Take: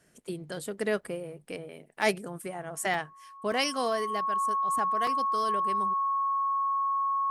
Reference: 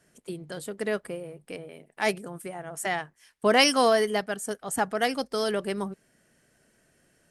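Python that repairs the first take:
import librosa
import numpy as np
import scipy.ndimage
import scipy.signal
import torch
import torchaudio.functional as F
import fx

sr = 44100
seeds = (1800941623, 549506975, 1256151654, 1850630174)

y = fx.notch(x, sr, hz=1100.0, q=30.0)
y = fx.fix_interpolate(y, sr, at_s=(1.01, 2.02, 2.94, 3.52, 5.07), length_ms=3.0)
y = fx.fix_level(y, sr, at_s=3.37, step_db=8.5)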